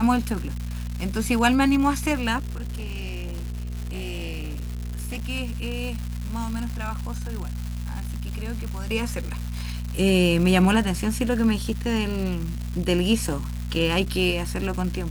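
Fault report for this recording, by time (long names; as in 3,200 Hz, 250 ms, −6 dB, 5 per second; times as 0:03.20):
surface crackle 390 per second −30 dBFS
mains hum 60 Hz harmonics 4 −30 dBFS
0:02.37–0:05.22: clipping −27 dBFS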